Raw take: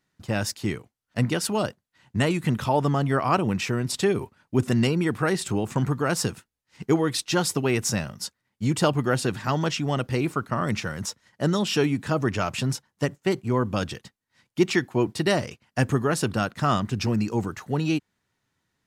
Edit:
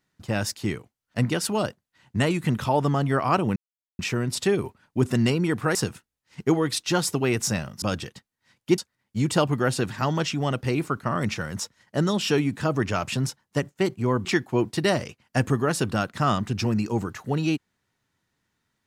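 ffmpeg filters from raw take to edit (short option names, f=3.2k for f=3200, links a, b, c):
-filter_complex "[0:a]asplit=6[a][b][c][d][e][f];[a]atrim=end=3.56,asetpts=PTS-STARTPTS,afade=t=out:st=3.556:d=0.004:c=hsin,apad=pad_dur=0.43[g];[b]atrim=start=3.56:end=5.322,asetpts=PTS-STARTPTS,afade=t=in:d=0.004:c=hsin[h];[c]atrim=start=6.168:end=8.242[i];[d]atrim=start=13.708:end=14.672[j];[e]atrim=start=8.238:end=13.712[k];[f]atrim=start=14.668[l];[g][h]concat=n=2:v=0:a=1[m];[m][i]acrossfade=d=0.004:c1=hsin:c2=hsin[n];[n][j]acrossfade=d=0.004:c1=hsin:c2=hsin[o];[o][k]acrossfade=d=0.004:c1=hsin:c2=hsin[p];[p][l]acrossfade=d=0.004:c1=hsin:c2=hsin"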